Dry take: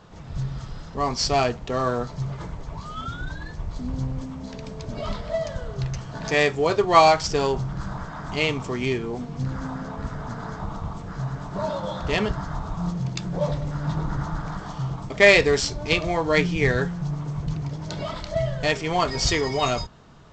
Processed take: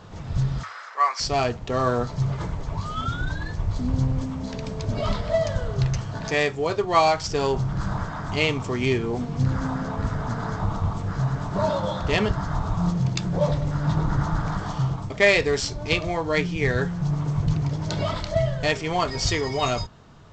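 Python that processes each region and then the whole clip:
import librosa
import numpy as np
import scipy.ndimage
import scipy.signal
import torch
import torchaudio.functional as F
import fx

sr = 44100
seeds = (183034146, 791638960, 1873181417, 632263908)

y = fx.chain(x, sr, fx.highpass(hz=610.0, slope=24),
    fx.band_shelf(hz=1600.0, db=11.5, octaves=1.3), at=(0.63, 1.2))
y = fx.peak_eq(y, sr, hz=100.0, db=9.5, octaves=0.26)
y = fx.rider(y, sr, range_db=4, speed_s=0.5)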